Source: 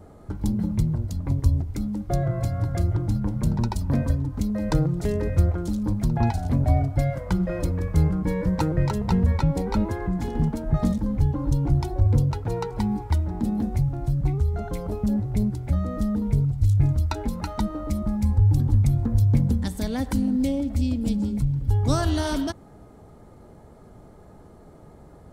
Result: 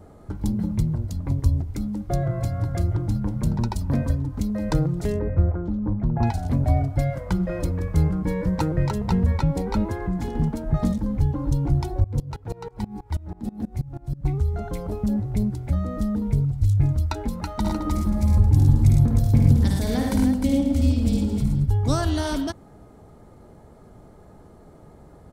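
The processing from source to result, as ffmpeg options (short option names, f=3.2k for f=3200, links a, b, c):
-filter_complex "[0:a]asettb=1/sr,asplit=3[a][b][c];[a]atrim=end=5.194[d];[b]atrim=start=5.19:end=6.23,asetpts=PTS-STARTPTS,afade=t=in:d=0.004:c=qsin,afade=t=out:st=1.036:d=0.004:c=qsin,lowpass=1.4k[e];[c]atrim=start=6.226[f];[d][e]acrossfade=d=0.004:c1=hsin:c2=qsin[g];[g][f]acrossfade=d=0.004:c1=qsin:c2=hsin,asettb=1/sr,asplit=3[h][i][j];[h]atrim=end=12.044[k];[i]atrim=start=12.04:end=14.25,asetpts=PTS-STARTPTS,afade=t=in:d=0.004:c=qsin,afade=t=out:st=2.206:d=0.004:c=qsin,aeval=exprs='val(0)*pow(10,-23*if(lt(mod(-6.2*n/s,1),2*abs(-6.2)/1000),1-mod(-6.2*n/s,1)/(2*abs(-6.2)/1000),(mod(-6.2*n/s,1)-2*abs(-6.2)/1000)/(1-2*abs(-6.2)/1000))/20)':c=same[l];[j]atrim=start=14.246[m];[k][l]acrossfade=d=0.004:c1=hsin:c2=qsin[n];[n][m]acrossfade=d=0.004:c1=qsin:c2=hsin,asplit=3[o][p][q];[o]afade=t=out:st=17.64:d=0.02[r];[p]aecho=1:1:54|76|104|117|216|305:0.631|0.501|0.473|0.473|0.237|0.473,afade=t=in:st=17.64:d=0.02,afade=t=out:st=21.64:d=0.02[s];[q]afade=t=in:st=21.64:d=0.02[t];[r][s][t]amix=inputs=3:normalize=0"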